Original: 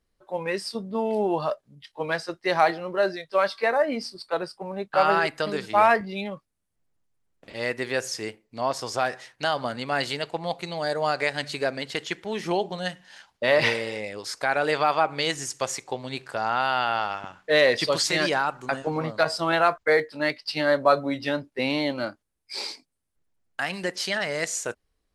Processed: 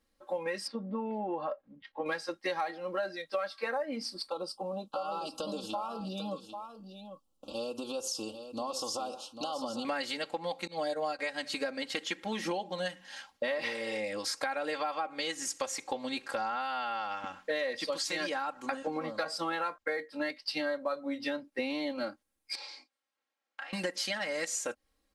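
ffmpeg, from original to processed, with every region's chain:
ffmpeg -i in.wav -filter_complex "[0:a]asettb=1/sr,asplit=3[link_01][link_02][link_03];[link_01]atrim=end=0.674[link_04];[link_02]atrim=start=0.67:end=2.06,asetpts=PTS-STARTPTS,afade=type=in:duration=0.004:curve=qsin,afade=type=out:start_time=1.386:duration=0.004:curve=qsin,lowpass=1900,acompressor=threshold=-38dB:ratio=1.5:attack=3.2:release=140:knee=1:detection=peak[link_05];[link_03]atrim=start=2.056[link_06];[link_04][link_05]acrossfade=duration=0.004:curve1=hsin:curve2=qsin[link_07];[link_07][link_06]acrossfade=duration=0.004:curve1=qsin:curve2=hsin,asettb=1/sr,asplit=3[link_08][link_09][link_10];[link_08]atrim=end=4.294[link_11];[link_09]atrim=start=4.29:end=9.85,asetpts=PTS-STARTPTS,afade=type=in:duration=0.004:curve=qsin,afade=type=out:start_time=5.556:duration=0.004:curve=qsin,acompressor=threshold=-33dB:ratio=4:attack=3.2:release=140:knee=1:detection=peak,asuperstop=centerf=1900:order=8:qfactor=1.3,aecho=1:1:795:0.299,atrim=end_sample=245196[link_12];[link_10]atrim=start=9.846[link_13];[link_11][link_12]acrossfade=duration=0.004:curve1=hsin:curve2=qsin[link_14];[link_14][link_13]acrossfade=duration=0.004:curve1=qsin:curve2=hsin,asettb=1/sr,asplit=3[link_15][link_16][link_17];[link_15]atrim=end=10.674[link_18];[link_16]atrim=start=10.67:end=11.19,asetpts=PTS-STARTPTS,afade=type=in:duration=0.004:curve=qsin,afade=type=out:start_time=0.516:duration=0.004:curve=qsin,aecho=1:1:6.4:0.69,atrim=end_sample=22932,agate=range=-33dB:threshold=-22dB:ratio=3:release=100:detection=peak[link_19];[link_17]atrim=start=11.186[link_20];[link_18][link_19]acrossfade=duration=0.004:curve1=hsin:curve2=qsin[link_21];[link_21][link_20]acrossfade=duration=0.004:curve1=qsin:curve2=hsin,asettb=1/sr,asplit=3[link_22][link_23][link_24];[link_22]atrim=end=22.554[link_25];[link_23]atrim=start=22.55:end=23.73,asetpts=PTS-STARTPTS,afade=type=in:duration=0.004:curve=qsin,afade=type=out:start_time=1.176:duration=0.004:curve=qsin,acompressor=threshold=-42dB:ratio=12:attack=3.2:release=140:knee=1:detection=peak,highpass=610,lowpass=4700,asplit=2[link_26][link_27];[link_27]adelay=32,volume=-3.5dB[link_28];[link_26][link_28]amix=inputs=2:normalize=0,atrim=end_sample=52038[link_29];[link_24]atrim=start=23.726[link_30];[link_25][link_29]acrossfade=duration=0.004:curve1=hsin:curve2=qsin[link_31];[link_31][link_30]acrossfade=duration=0.004:curve1=qsin:curve2=hsin,lowshelf=frequency=91:gain=-10,aecho=1:1:3.7:0.89,acompressor=threshold=-31dB:ratio=8" out.wav

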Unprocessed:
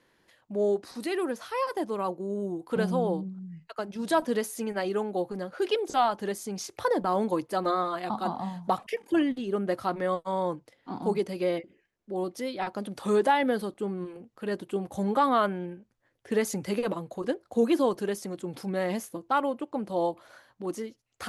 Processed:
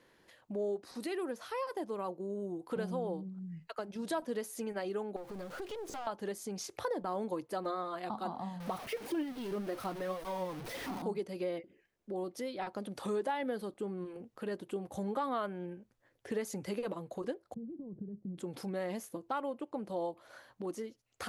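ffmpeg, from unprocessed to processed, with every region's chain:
ffmpeg -i in.wav -filter_complex "[0:a]asettb=1/sr,asplit=3[link_01][link_02][link_03];[link_01]atrim=end=5.164[link_04];[link_02]atrim=start=5.16:end=6.07,asetpts=PTS-STARTPTS,afade=type=in:duration=0.004:curve=qsin,afade=type=out:start_time=0.906:duration=0.004:curve=qsin,aeval=exprs='val(0)+0.5*0.01*sgn(val(0))':channel_layout=same,acompressor=threshold=-35dB:ratio=2.5:attack=3.2:release=140:knee=1:detection=peak,aeval=exprs='(tanh(44.7*val(0)+0.65)-tanh(0.65))/44.7':channel_layout=same[link_05];[link_03]atrim=start=6.066[link_06];[link_04][link_05]acrossfade=duration=0.004:curve1=hsin:curve2=qsin[link_07];[link_07][link_06]acrossfade=duration=0.004:curve1=qsin:curve2=hsin,asettb=1/sr,asplit=3[link_08][link_09][link_10];[link_08]atrim=end=8.604[link_11];[link_09]atrim=start=8.6:end=11.02,asetpts=PTS-STARTPTS,afade=type=in:duration=0.004:curve=qsin,afade=type=out:start_time=2.416:duration=0.004:curve=qsin,aeval=exprs='val(0)+0.5*0.0316*sgn(val(0))':channel_layout=same,flanger=delay=2.4:depth=5.2:regen=50:speed=1.8:shape=triangular,equalizer=frequency=7300:width_type=o:width=0.29:gain=-6[link_12];[link_10]atrim=start=11.016[link_13];[link_11][link_12]acrossfade=duration=0.004:curve1=hsin:curve2=qsin[link_14];[link_14][link_13]acrossfade=duration=0.004:curve1=qsin:curve2=hsin,asettb=1/sr,asplit=3[link_15][link_16][link_17];[link_15]atrim=end=17.544[link_18];[link_16]atrim=start=17.54:end=18.38,asetpts=PTS-STARTPTS,afade=type=in:duration=0.004:curve=qsin,afade=type=out:start_time=0.836:duration=0.004:curve=qsin,acompressor=threshold=-33dB:ratio=5:attack=3.2:release=140:knee=1:detection=peak,lowpass=frequency=170:width_type=q:width=1.9[link_19];[link_17]atrim=start=18.376[link_20];[link_18][link_19]acrossfade=duration=0.004:curve1=hsin:curve2=qsin[link_21];[link_21][link_20]acrossfade=duration=0.004:curve1=qsin:curve2=hsin,equalizer=frequency=490:width=1.5:gain=2.5,acompressor=threshold=-42dB:ratio=2" out.wav

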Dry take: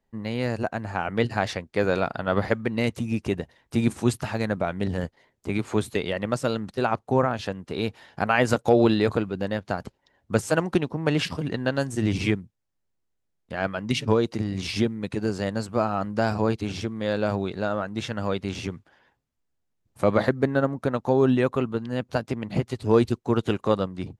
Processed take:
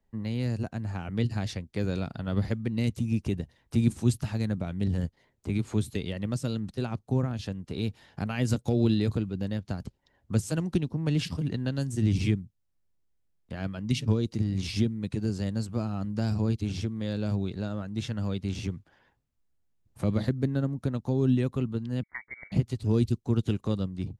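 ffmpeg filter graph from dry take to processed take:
ffmpeg -i in.wav -filter_complex "[0:a]asettb=1/sr,asplit=3[link_01][link_02][link_03];[link_01]atrim=end=22.034[link_04];[link_02]atrim=start=22.03:end=22.52,asetpts=PTS-STARTPTS,afade=type=in:duration=0.004:curve=qsin,afade=type=out:start_time=0.486:duration=0.004:curve=qsin,highpass=frequency=290:width=0.5412,highpass=frequency=290:width=1.3066,lowpass=frequency=2100:width_type=q:width=0.5098,lowpass=frequency=2100:width_type=q:width=0.6013,lowpass=frequency=2100:width_type=q:width=0.9,lowpass=frequency=2100:width_type=q:width=2.563,afreqshift=-2500[link_05];[link_03]atrim=start=22.516[link_06];[link_04][link_05]acrossfade=duration=0.004:curve1=hsin:curve2=qsin[link_07];[link_07][link_06]acrossfade=duration=0.004:curve1=qsin:curve2=hsin,lowshelf=frequency=160:gain=8.5,acrossover=split=320|3000[link_08][link_09][link_10];[link_09]acompressor=threshold=-46dB:ratio=2[link_11];[link_08][link_11][link_10]amix=inputs=3:normalize=0,volume=-3.5dB" out.wav

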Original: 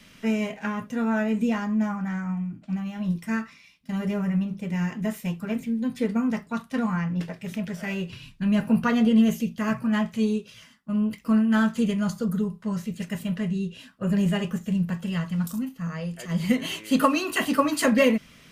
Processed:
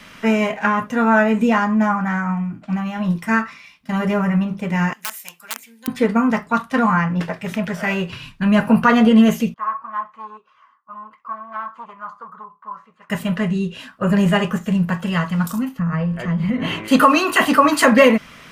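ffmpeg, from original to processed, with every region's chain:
ffmpeg -i in.wav -filter_complex "[0:a]asettb=1/sr,asplit=3[link_01][link_02][link_03];[link_01]atrim=end=4.934[link_04];[link_02]atrim=start=4.93:end=5.88,asetpts=PTS-STARTPTS,afade=type=in:duration=0.004:curve=qsin,afade=type=out:start_time=0.946:duration=0.004:curve=qsin,highpass=frequency=62:width=0.5412,highpass=frequency=62:width=1.3066,aeval=exprs='(mod(9.44*val(0)+1,2)-1)/9.44':channel_layout=same,aderivative[link_05];[link_03]atrim=start=5.876[link_06];[link_04][link_05]acrossfade=duration=0.004:curve1=hsin:curve2=qsin[link_07];[link_07][link_06]acrossfade=duration=0.004:curve1=qsin:curve2=hsin,asettb=1/sr,asplit=3[link_08][link_09][link_10];[link_08]atrim=end=9.544[link_11];[link_09]atrim=start=9.54:end=13.1,asetpts=PTS-STARTPTS,afade=type=in:duration=0.004:curve=qsin,afade=type=out:start_time=3.556:duration=0.004:curve=qsin,volume=21dB,asoftclip=hard,volume=-21dB,bandpass=frequency=1100:width_type=q:width=7.9[link_12];[link_10]atrim=start=13.096[link_13];[link_11][link_12]acrossfade=duration=0.004:curve1=hsin:curve2=qsin[link_14];[link_14][link_13]acrossfade=duration=0.004:curve1=qsin:curve2=hsin,asettb=1/sr,asplit=3[link_15][link_16][link_17];[link_15]atrim=end=15.794[link_18];[link_16]atrim=start=15.79:end=16.88,asetpts=PTS-STARTPTS,afade=type=in:duration=0.004:curve=qsin,afade=type=out:start_time=1.086:duration=0.004:curve=qsin,bass=frequency=250:gain=13,treble=frequency=4000:gain=-15,bandreject=frequency=47.97:width_type=h:width=4,bandreject=frequency=95.94:width_type=h:width=4,bandreject=frequency=143.91:width_type=h:width=4,bandreject=frequency=191.88:width_type=h:width=4,bandreject=frequency=239.85:width_type=h:width=4,bandreject=frequency=287.82:width_type=h:width=4,bandreject=frequency=335.79:width_type=h:width=4,bandreject=frequency=383.76:width_type=h:width=4,bandreject=frequency=431.73:width_type=h:width=4,bandreject=frequency=479.7:width_type=h:width=4,bandreject=frequency=527.67:width_type=h:width=4,bandreject=frequency=575.64:width_type=h:width=4,bandreject=frequency=623.61:width_type=h:width=4,bandreject=frequency=671.58:width_type=h:width=4,bandreject=frequency=719.55:width_type=h:width=4,bandreject=frequency=767.52:width_type=h:width=4,bandreject=frequency=815.49:width_type=h:width=4,bandreject=frequency=863.46:width_type=h:width=4,bandreject=frequency=911.43:width_type=h:width=4,bandreject=frequency=959.4:width_type=h:width=4,bandreject=frequency=1007.37:width_type=h:width=4,bandreject=frequency=1055.34:width_type=h:width=4,bandreject=frequency=1103.31:width_type=h:width=4,bandreject=frequency=1151.28:width_type=h:width=4,bandreject=frequency=1199.25:width_type=h:width=4,bandreject=frequency=1247.22:width_type=h:width=4,bandreject=frequency=1295.19:width_type=h:width=4,bandreject=frequency=1343.16:width_type=h:width=4,bandreject=frequency=1391.13:width_type=h:width=4,bandreject=frequency=1439.1:width_type=h:width=4,bandreject=frequency=1487.07:width_type=h:width=4,bandreject=frequency=1535.04:width_type=h:width=4,bandreject=frequency=1583.01:width_type=h:width=4,bandreject=frequency=1630.98:width_type=h:width=4,bandreject=frequency=1678.95:width_type=h:width=4,bandreject=frequency=1726.92:width_type=h:width=4,bandreject=frequency=1774.89:width_type=h:width=4,bandreject=frequency=1822.86:width_type=h:width=4,acompressor=threshold=-24dB:ratio=6:attack=3.2:release=140:knee=1:detection=peak[link_19];[link_17]atrim=start=16.876[link_20];[link_18][link_19]acrossfade=duration=0.004:curve1=hsin:curve2=qsin[link_21];[link_21][link_20]acrossfade=duration=0.004:curve1=qsin:curve2=hsin,equalizer=frequency=1100:width=0.63:gain=10.5,alimiter=level_in=6.5dB:limit=-1dB:release=50:level=0:latency=1,volume=-1dB" out.wav

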